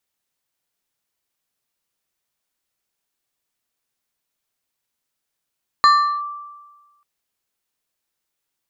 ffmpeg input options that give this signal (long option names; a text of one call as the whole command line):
ffmpeg -f lavfi -i "aevalsrc='0.447*pow(10,-3*t/1.34)*sin(2*PI*1170*t+0.55*clip(1-t/0.38,0,1)*sin(2*PI*2.53*1170*t))':duration=1.19:sample_rate=44100" out.wav